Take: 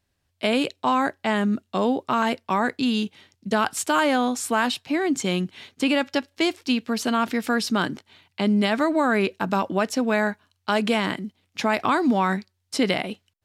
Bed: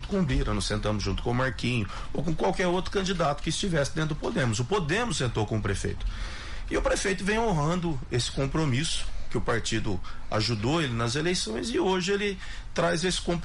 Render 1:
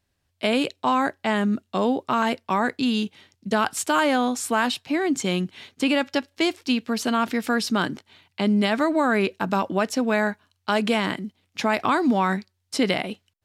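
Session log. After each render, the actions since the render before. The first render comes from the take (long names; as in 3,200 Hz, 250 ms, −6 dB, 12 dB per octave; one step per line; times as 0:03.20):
no processing that can be heard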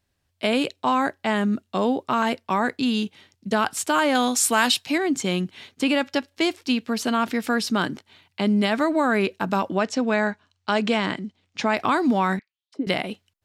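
0:04.15–0:04.98: high-shelf EQ 2,300 Hz +10.5 dB
0:09.75–0:11.77: low-pass filter 7,800 Hz 24 dB per octave
0:12.39–0:12.87: envelope filter 300–4,300 Hz, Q 5.5, down, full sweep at −27 dBFS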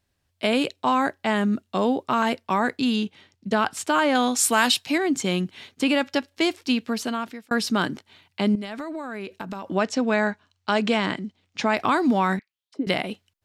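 0:02.96–0:04.39: high-shelf EQ 7,600 Hz −9.5 dB
0:06.85–0:07.51: fade out
0:08.55–0:09.71: downward compressor 8 to 1, threshold −29 dBFS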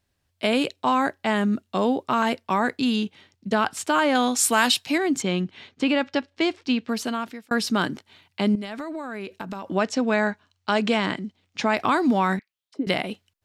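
0:05.22–0:06.89: high-frequency loss of the air 100 metres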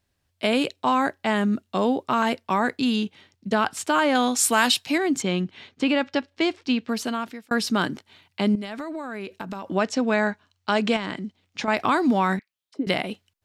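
0:10.96–0:11.68: downward compressor, threshold −24 dBFS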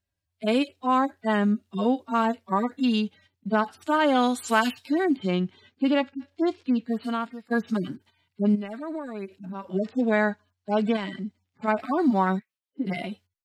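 harmonic-percussive split with one part muted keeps harmonic
noise gate −52 dBFS, range −8 dB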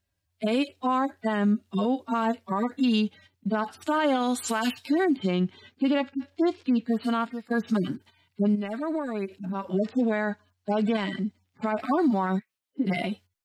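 in parallel at −3 dB: downward compressor, threshold −30 dBFS, peak gain reduction 14 dB
on the sum: brickwall limiter −16.5 dBFS, peak gain reduction 10 dB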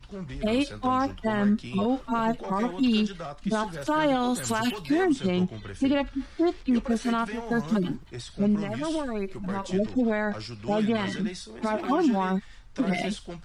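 mix in bed −11.5 dB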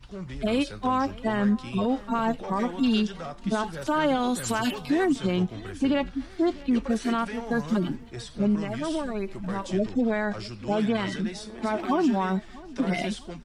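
repeating echo 649 ms, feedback 45%, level −21 dB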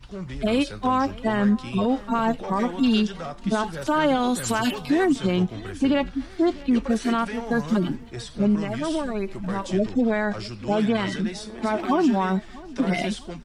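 level +3 dB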